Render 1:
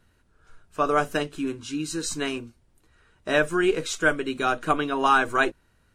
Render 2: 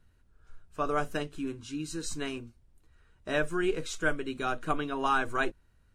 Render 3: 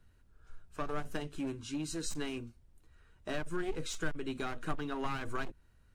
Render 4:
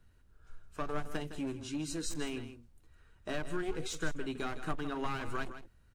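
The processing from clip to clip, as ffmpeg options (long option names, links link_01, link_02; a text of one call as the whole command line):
ffmpeg -i in.wav -af "lowshelf=frequency=110:gain=11.5,volume=-8dB" out.wav
ffmpeg -i in.wav -filter_complex "[0:a]aeval=exprs='clip(val(0),-1,0.0224)':channel_layout=same,acrossover=split=240[link_01][link_02];[link_02]acompressor=threshold=-36dB:ratio=6[link_03];[link_01][link_03]amix=inputs=2:normalize=0" out.wav
ffmpeg -i in.wav -af "aecho=1:1:160:0.266" out.wav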